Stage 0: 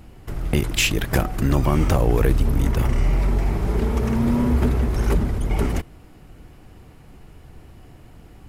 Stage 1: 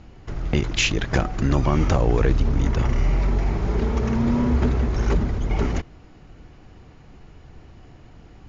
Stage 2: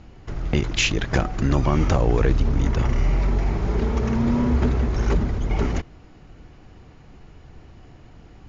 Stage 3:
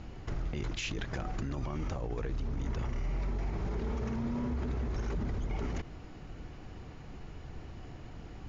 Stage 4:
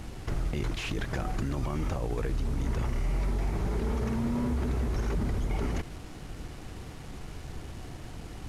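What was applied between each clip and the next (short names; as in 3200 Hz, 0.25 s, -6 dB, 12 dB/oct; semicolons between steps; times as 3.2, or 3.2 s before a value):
Chebyshev low-pass 7000 Hz, order 8
nothing audible
reverse; compressor 6:1, threshold -26 dBFS, peak gain reduction 12.5 dB; reverse; limiter -27 dBFS, peak gain reduction 10.5 dB
delta modulation 64 kbps, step -49.5 dBFS; in parallel at -10 dB: crossover distortion -53.5 dBFS; on the sum: gain +2.5 dB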